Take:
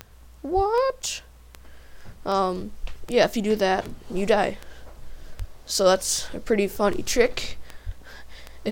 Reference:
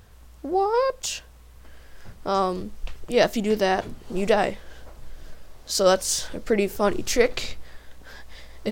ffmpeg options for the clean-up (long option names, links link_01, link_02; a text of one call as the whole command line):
ffmpeg -i in.wav -filter_complex "[0:a]adeclick=threshold=4,asplit=3[link_01][link_02][link_03];[link_01]afade=type=out:start_time=0.55:duration=0.02[link_04];[link_02]highpass=frequency=140:width=0.5412,highpass=frequency=140:width=1.3066,afade=type=in:start_time=0.55:duration=0.02,afade=type=out:start_time=0.67:duration=0.02[link_05];[link_03]afade=type=in:start_time=0.67:duration=0.02[link_06];[link_04][link_05][link_06]amix=inputs=3:normalize=0,asplit=3[link_07][link_08][link_09];[link_07]afade=type=out:start_time=5.38:duration=0.02[link_10];[link_08]highpass=frequency=140:width=0.5412,highpass=frequency=140:width=1.3066,afade=type=in:start_time=5.38:duration=0.02,afade=type=out:start_time=5.5:duration=0.02[link_11];[link_09]afade=type=in:start_time=5.5:duration=0.02[link_12];[link_10][link_11][link_12]amix=inputs=3:normalize=0,asplit=3[link_13][link_14][link_15];[link_13]afade=type=out:start_time=7.85:duration=0.02[link_16];[link_14]highpass=frequency=140:width=0.5412,highpass=frequency=140:width=1.3066,afade=type=in:start_time=7.85:duration=0.02,afade=type=out:start_time=7.97:duration=0.02[link_17];[link_15]afade=type=in:start_time=7.97:duration=0.02[link_18];[link_16][link_17][link_18]amix=inputs=3:normalize=0" out.wav